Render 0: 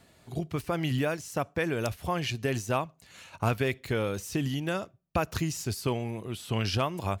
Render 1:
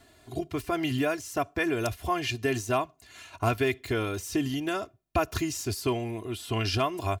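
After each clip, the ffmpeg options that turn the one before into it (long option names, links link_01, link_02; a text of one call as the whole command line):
ffmpeg -i in.wav -af "aecho=1:1:2.9:0.76" out.wav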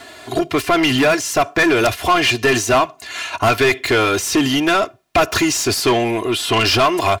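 ffmpeg -i in.wav -filter_complex "[0:a]asplit=2[link_01][link_02];[link_02]highpass=frequency=720:poles=1,volume=23dB,asoftclip=type=tanh:threshold=-12dB[link_03];[link_01][link_03]amix=inputs=2:normalize=0,lowpass=frequency=4200:poles=1,volume=-6dB,volume=6.5dB" out.wav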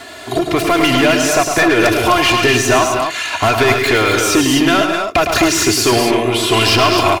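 ffmpeg -i in.wav -filter_complex "[0:a]acompressor=threshold=-22dB:ratio=1.5,asplit=2[link_01][link_02];[link_02]aecho=0:1:106|142|212|255:0.447|0.266|0.335|0.531[link_03];[link_01][link_03]amix=inputs=2:normalize=0,volume=4.5dB" out.wav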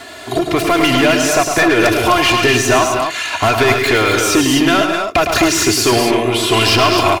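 ffmpeg -i in.wav -af anull out.wav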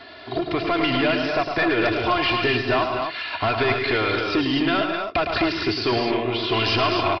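ffmpeg -i in.wav -af "aresample=11025,aresample=44100,volume=-8.5dB" out.wav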